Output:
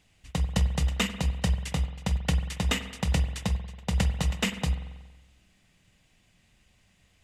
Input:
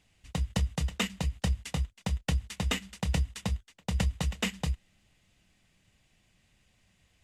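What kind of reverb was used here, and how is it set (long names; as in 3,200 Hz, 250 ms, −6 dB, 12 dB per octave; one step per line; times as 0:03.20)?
spring reverb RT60 1.2 s, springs 46 ms, chirp 60 ms, DRR 9.5 dB
level +3 dB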